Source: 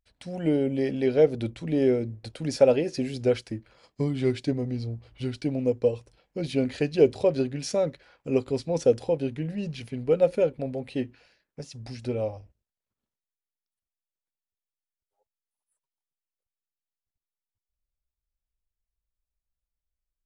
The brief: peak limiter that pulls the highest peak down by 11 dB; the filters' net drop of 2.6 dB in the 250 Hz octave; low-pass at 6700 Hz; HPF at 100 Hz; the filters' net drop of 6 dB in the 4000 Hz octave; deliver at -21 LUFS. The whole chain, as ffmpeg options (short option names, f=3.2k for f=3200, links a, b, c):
-af "highpass=100,lowpass=6.7k,equalizer=f=250:t=o:g=-3,equalizer=f=4k:t=o:g=-7.5,volume=10dB,alimiter=limit=-8.5dB:level=0:latency=1"